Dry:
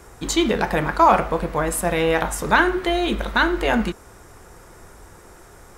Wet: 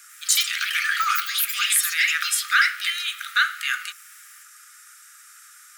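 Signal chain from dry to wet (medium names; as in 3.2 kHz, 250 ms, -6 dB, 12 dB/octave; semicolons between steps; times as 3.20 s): Chebyshev high-pass 1.2 kHz, order 10; treble shelf 4.2 kHz +8 dB; ever faster or slower copies 95 ms, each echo +5 st, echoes 3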